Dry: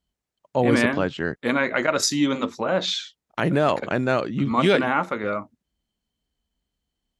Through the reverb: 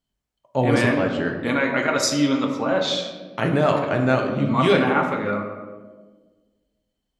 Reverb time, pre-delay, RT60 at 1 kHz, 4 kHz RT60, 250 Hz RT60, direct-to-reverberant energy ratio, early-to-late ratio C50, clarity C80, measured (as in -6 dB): 1.4 s, 7 ms, 1.2 s, 0.80 s, 1.8 s, 1.5 dB, 5.5 dB, 7.5 dB